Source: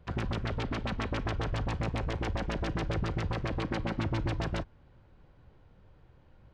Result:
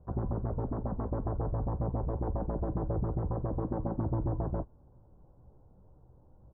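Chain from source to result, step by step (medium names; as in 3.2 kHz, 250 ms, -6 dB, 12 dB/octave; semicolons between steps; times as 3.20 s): inverse Chebyshev low-pass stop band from 2.5 kHz, stop band 50 dB; doubling 16 ms -12 dB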